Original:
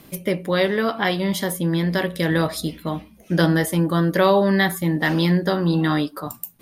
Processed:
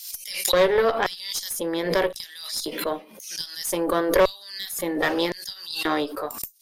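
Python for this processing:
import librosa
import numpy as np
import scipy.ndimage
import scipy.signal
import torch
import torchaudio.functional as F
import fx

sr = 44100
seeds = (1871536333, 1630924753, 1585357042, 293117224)

y = fx.filter_lfo_highpass(x, sr, shape='square', hz=0.94, low_hz=460.0, high_hz=5400.0, q=2.5)
y = fx.tube_stage(y, sr, drive_db=11.0, bias=0.6)
y = fx.pre_swell(y, sr, db_per_s=68.0)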